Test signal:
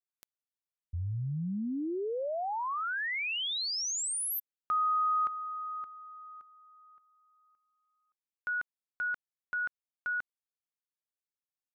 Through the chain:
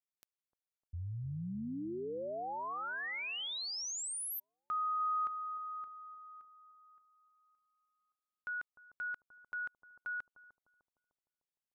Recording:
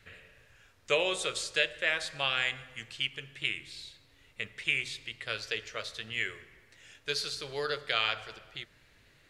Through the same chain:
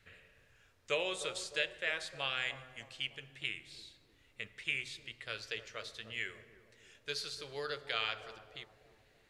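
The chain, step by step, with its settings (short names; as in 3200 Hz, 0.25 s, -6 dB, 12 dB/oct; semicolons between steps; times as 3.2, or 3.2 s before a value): analogue delay 0.302 s, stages 2048, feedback 48%, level -11.5 dB; gain -6.5 dB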